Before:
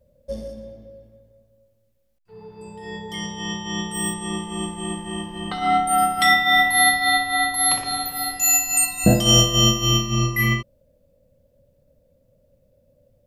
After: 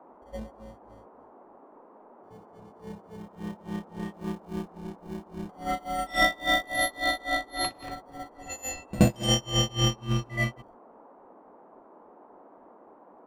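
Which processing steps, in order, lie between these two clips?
level-controlled noise filter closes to 300 Hz, open at -13.5 dBFS; gate -50 dBFS, range -12 dB; in parallel at -7 dB: sample-and-hold 34×; on the sum: granulator 253 ms, grains 3.6 per s, pitch spread up and down by 0 st; band noise 220–1000 Hz -47 dBFS; on a send: reverse echo 75 ms -18.5 dB; on the sum: trim -6 dB

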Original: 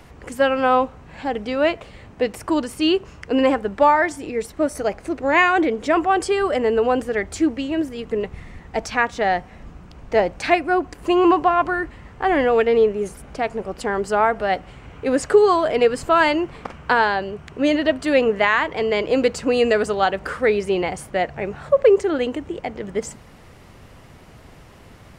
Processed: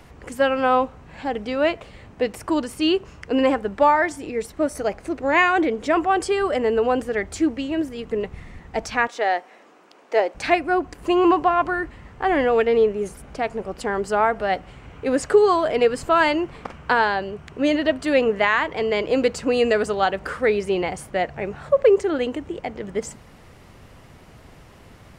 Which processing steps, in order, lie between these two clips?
9.07–10.35 s: high-pass 330 Hz 24 dB/octave; trim -1.5 dB

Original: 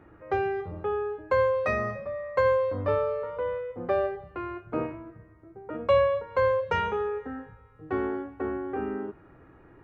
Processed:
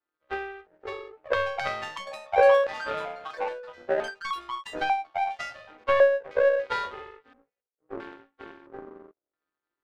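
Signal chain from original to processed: partials quantised in pitch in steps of 2 st; high-pass 250 Hz 24 dB/octave; LFO low-pass square 0.75 Hz 600–1600 Hz; power-law waveshaper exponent 2; ever faster or slower copies 653 ms, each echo +6 st, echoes 3, each echo -6 dB; trim +1.5 dB

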